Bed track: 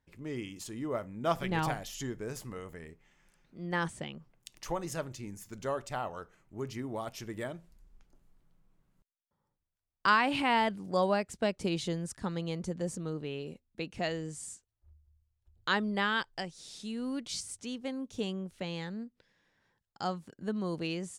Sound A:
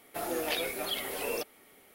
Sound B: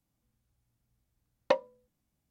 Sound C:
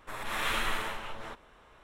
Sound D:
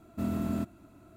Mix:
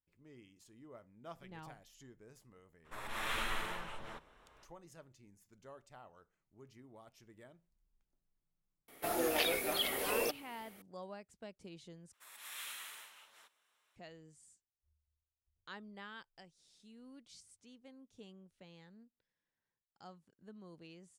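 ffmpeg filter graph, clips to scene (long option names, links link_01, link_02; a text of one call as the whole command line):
ffmpeg -i bed.wav -i cue0.wav -i cue1.wav -i cue2.wav -filter_complex "[3:a]asplit=2[link_01][link_02];[0:a]volume=-20dB[link_03];[link_02]aderivative[link_04];[link_03]asplit=2[link_05][link_06];[link_05]atrim=end=12.134[link_07];[link_04]atrim=end=1.83,asetpts=PTS-STARTPTS,volume=-6dB[link_08];[link_06]atrim=start=13.956[link_09];[link_01]atrim=end=1.83,asetpts=PTS-STARTPTS,volume=-6.5dB,afade=type=in:duration=0.02,afade=type=out:start_time=1.81:duration=0.02,adelay=2840[link_10];[1:a]atrim=end=1.94,asetpts=PTS-STARTPTS,volume=-0.5dB,afade=type=in:duration=0.004:curve=hsin,afade=type=out:start_time=1.936:duration=0.004:curve=hsin,adelay=8880[link_11];[link_07][link_08]acrossfade=duration=0.004:curve1=hsin:curve2=hsin[link_12];[link_12][link_09]acrossfade=duration=0.004:curve1=hsin:curve2=hsin[link_13];[link_13][link_10][link_11]amix=inputs=3:normalize=0" out.wav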